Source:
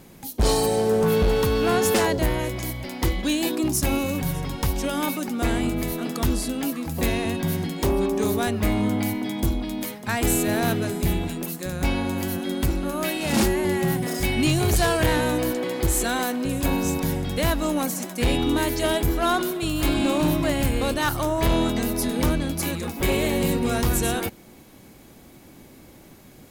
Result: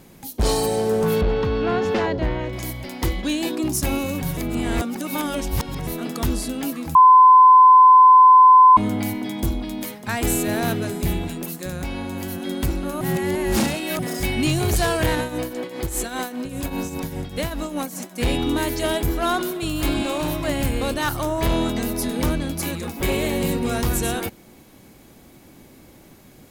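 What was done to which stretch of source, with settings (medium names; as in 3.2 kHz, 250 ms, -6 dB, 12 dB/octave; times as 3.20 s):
1.21–2.53 s: distance through air 220 m
3.20–3.63 s: treble shelf 10 kHz -8.5 dB
4.37–5.87 s: reverse
6.95–8.77 s: bleep 1.02 kHz -6.5 dBFS
11.78–12.43 s: compression 4:1, threshold -25 dBFS
13.01–13.99 s: reverse
15.15–18.20 s: tremolo triangle 5 Hz, depth 75%
20.03–20.48 s: peaking EQ 220 Hz -12 dB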